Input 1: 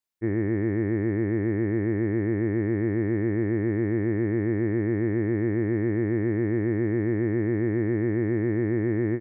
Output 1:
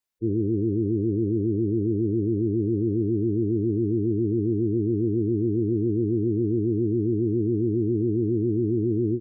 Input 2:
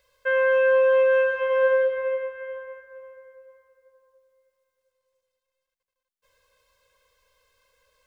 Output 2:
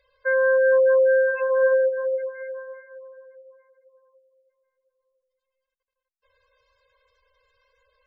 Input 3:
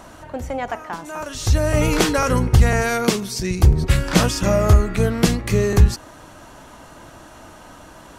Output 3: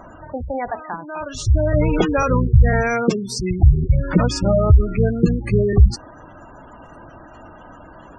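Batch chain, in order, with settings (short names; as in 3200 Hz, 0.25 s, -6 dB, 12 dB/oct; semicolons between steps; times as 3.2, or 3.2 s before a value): spectral gate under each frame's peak -15 dB strong; gain +1.5 dB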